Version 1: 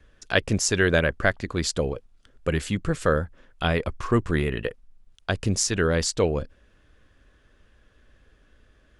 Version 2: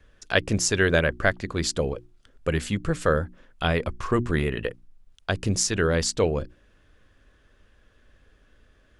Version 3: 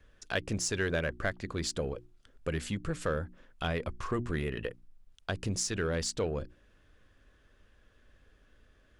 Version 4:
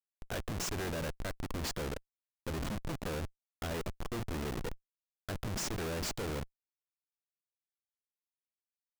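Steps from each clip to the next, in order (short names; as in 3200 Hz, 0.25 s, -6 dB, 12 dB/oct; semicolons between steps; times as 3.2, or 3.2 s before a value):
notches 60/120/180/240/300/360 Hz
in parallel at -4 dB: soft clip -21 dBFS, distortion -10 dB; on the sum: compressor 1.5:1, threshold -26 dBFS, peak gain reduction 5 dB; gain -8.5 dB
Schmitt trigger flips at -36 dBFS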